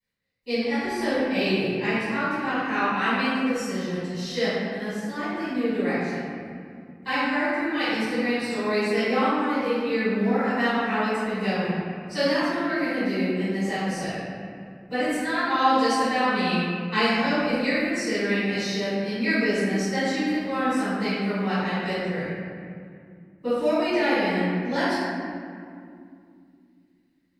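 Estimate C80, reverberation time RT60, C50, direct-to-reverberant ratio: -2.0 dB, 2.3 s, -4.5 dB, -18.0 dB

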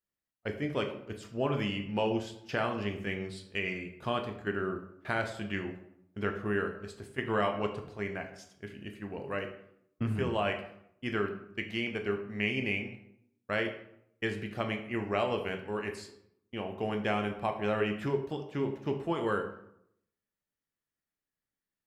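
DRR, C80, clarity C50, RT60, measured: 4.5 dB, 11.0 dB, 9.0 dB, 0.75 s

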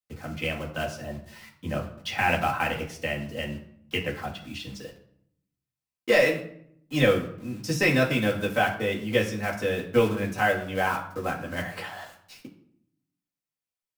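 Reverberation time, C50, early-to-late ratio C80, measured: 0.65 s, 9.5 dB, 13.0 dB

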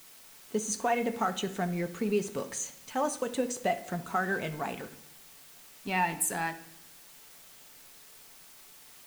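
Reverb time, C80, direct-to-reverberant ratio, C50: 0.75 s, 17.0 dB, 7.0 dB, 13.5 dB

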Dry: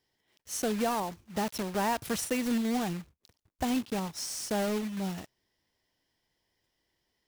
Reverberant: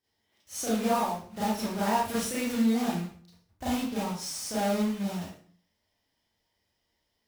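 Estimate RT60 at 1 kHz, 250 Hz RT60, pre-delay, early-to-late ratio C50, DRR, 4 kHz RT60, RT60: 0.45 s, 0.55 s, 29 ms, 0.0 dB, -10.0 dB, 0.40 s, 0.50 s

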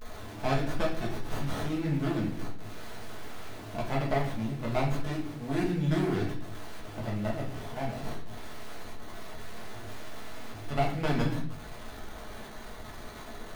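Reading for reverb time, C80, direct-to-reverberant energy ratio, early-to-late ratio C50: 0.55 s, 10.0 dB, -4.5 dB, 6.5 dB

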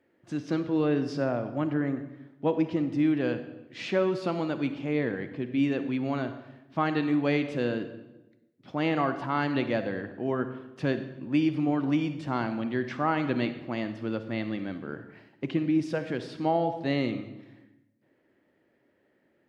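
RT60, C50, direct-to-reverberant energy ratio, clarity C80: 1.0 s, 10.5 dB, 9.5 dB, 12.5 dB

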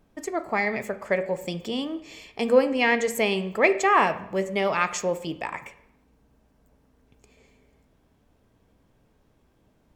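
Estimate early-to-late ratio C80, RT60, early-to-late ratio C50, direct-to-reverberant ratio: 16.5 dB, 0.75 s, 14.0 dB, 10.5 dB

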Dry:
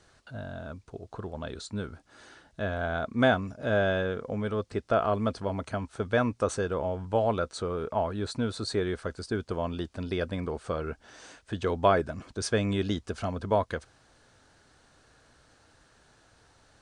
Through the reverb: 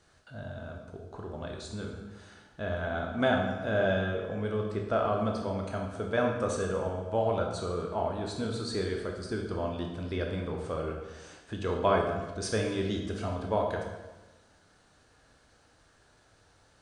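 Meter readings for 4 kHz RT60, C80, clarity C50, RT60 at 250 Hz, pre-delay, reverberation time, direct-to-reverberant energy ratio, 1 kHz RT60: 0.95 s, 6.0 dB, 4.0 dB, 1.4 s, 15 ms, 1.1 s, 0.5 dB, 1.1 s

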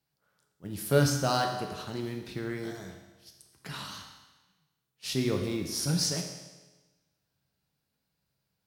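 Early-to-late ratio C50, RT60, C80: 6.0 dB, 1.2 s, 7.5 dB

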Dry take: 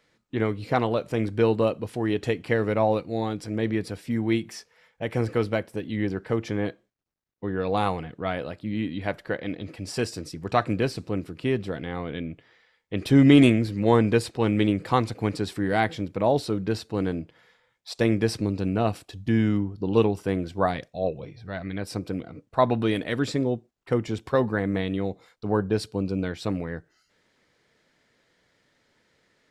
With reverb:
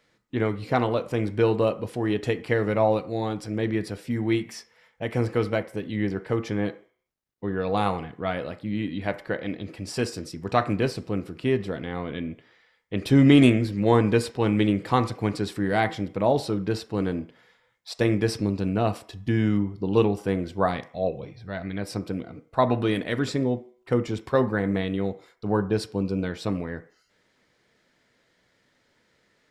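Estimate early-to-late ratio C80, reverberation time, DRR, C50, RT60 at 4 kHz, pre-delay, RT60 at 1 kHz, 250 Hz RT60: 20.0 dB, 0.50 s, 11.0 dB, 16.0 dB, 0.60 s, 13 ms, 0.55 s, 0.40 s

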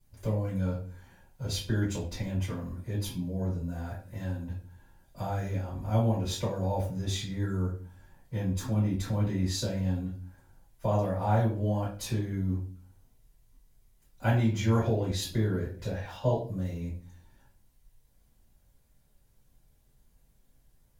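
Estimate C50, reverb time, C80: 7.0 dB, 0.40 s, 12.0 dB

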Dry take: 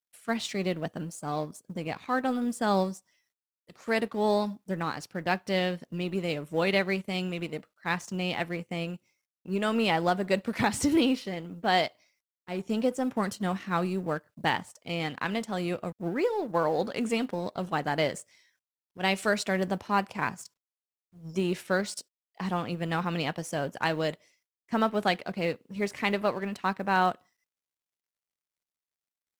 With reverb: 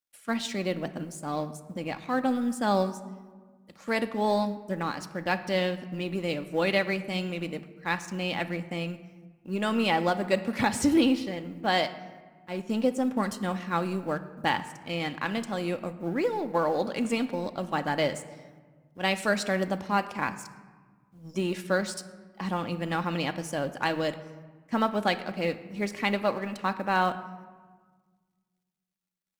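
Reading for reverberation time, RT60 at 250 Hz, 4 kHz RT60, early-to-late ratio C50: 1.5 s, 2.0 s, 0.80 s, 14.0 dB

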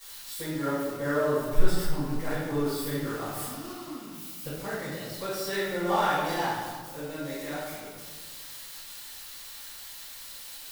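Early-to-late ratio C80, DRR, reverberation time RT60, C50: 1.0 dB, -17.0 dB, 1.6 s, -3.0 dB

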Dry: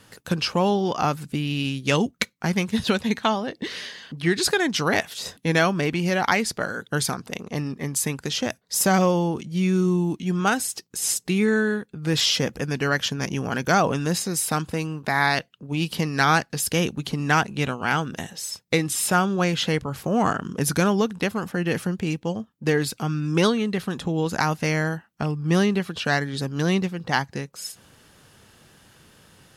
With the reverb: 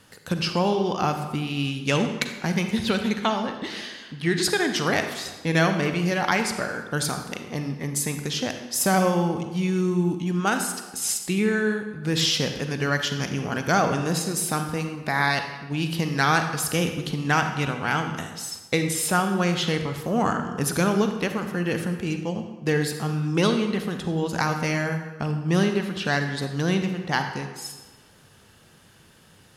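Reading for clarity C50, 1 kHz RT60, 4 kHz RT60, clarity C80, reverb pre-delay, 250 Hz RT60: 7.0 dB, 1.2 s, 0.95 s, 8.5 dB, 35 ms, 1.2 s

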